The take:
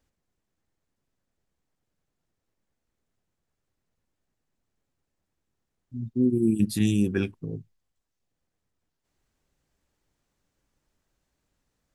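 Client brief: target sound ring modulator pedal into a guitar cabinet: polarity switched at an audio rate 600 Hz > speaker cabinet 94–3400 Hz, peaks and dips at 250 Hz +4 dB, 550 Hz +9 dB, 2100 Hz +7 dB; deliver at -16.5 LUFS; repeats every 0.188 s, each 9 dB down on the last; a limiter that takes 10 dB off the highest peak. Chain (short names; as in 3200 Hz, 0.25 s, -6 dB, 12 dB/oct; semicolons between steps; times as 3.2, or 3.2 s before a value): limiter -21.5 dBFS; feedback echo 0.188 s, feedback 35%, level -9 dB; polarity switched at an audio rate 600 Hz; speaker cabinet 94–3400 Hz, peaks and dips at 250 Hz +4 dB, 550 Hz +9 dB, 2100 Hz +7 dB; gain +13 dB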